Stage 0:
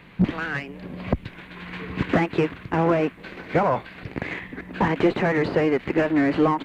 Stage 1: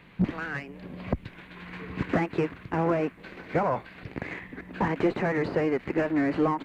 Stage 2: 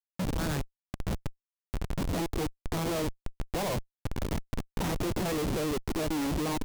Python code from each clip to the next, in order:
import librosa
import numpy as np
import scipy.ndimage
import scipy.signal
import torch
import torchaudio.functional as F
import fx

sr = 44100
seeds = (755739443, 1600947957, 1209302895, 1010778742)

y1 = fx.dynamic_eq(x, sr, hz=3300.0, q=2.1, threshold_db=-47.0, ratio=4.0, max_db=-5)
y1 = F.gain(torch.from_numpy(y1), -5.0).numpy()
y2 = fx.env_lowpass(y1, sr, base_hz=2100.0, full_db=-20.5)
y2 = fx.schmitt(y2, sr, flips_db=-32.0)
y2 = fx.dynamic_eq(y2, sr, hz=1600.0, q=0.91, threshold_db=-44.0, ratio=4.0, max_db=-5)